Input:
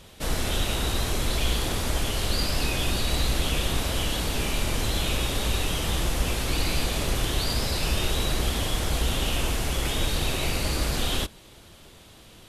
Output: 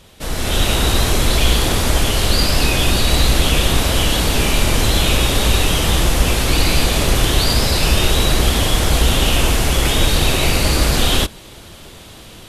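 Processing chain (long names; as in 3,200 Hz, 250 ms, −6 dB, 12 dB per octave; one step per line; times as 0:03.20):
automatic gain control gain up to 9 dB
level +2.5 dB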